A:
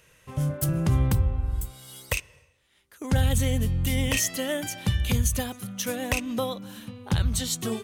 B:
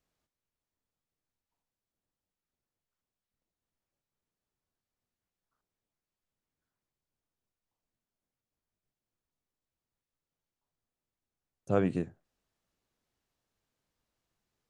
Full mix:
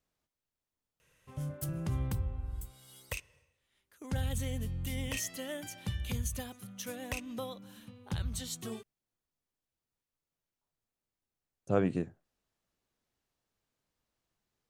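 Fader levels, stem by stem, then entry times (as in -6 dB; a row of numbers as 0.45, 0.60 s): -11.5, -1.0 dB; 1.00, 0.00 s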